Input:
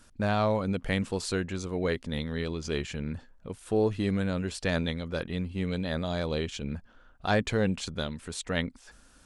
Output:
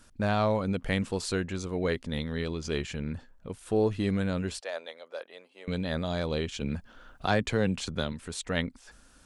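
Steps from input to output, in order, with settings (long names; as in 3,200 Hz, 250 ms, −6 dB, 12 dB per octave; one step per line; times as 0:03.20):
0:04.60–0:05.68: four-pole ladder high-pass 490 Hz, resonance 45%
0:06.60–0:08.13: multiband upward and downward compressor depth 40%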